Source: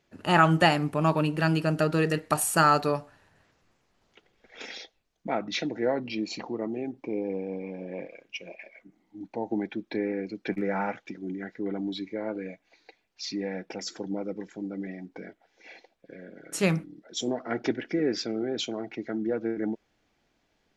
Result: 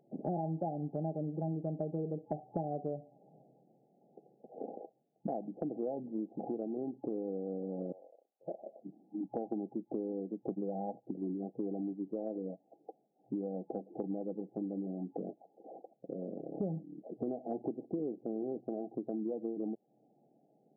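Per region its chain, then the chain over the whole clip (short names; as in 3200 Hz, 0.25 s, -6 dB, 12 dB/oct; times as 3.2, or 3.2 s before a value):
7.92–8.48 Chebyshev high-pass 1500 Hz + compressor 2.5:1, threshold -49 dBFS
whole clip: FFT band-pass 120–850 Hz; compressor 6:1, threshold -41 dBFS; gain +6 dB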